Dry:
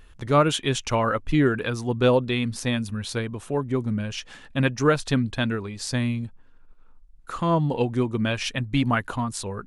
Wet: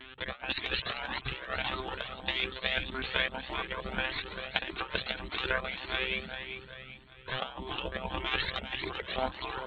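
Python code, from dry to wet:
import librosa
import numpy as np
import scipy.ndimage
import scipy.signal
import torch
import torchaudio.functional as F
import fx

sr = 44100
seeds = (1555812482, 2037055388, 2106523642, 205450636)

p1 = fx.lpc_monotone(x, sr, seeds[0], pitch_hz=130.0, order=8)
p2 = fx.high_shelf(p1, sr, hz=2200.0, db=10.0)
p3 = fx.over_compress(p2, sr, threshold_db=-25.0, ratio=-0.5)
p4 = fx.spec_gate(p3, sr, threshold_db=-15, keep='weak')
p5 = p4 + fx.echo_feedback(p4, sr, ms=392, feedback_pct=44, wet_db=-9, dry=0)
p6 = fx.comb_cascade(p5, sr, direction='rising', hz=1.7)
y = F.gain(torch.from_numpy(p6), 6.5).numpy()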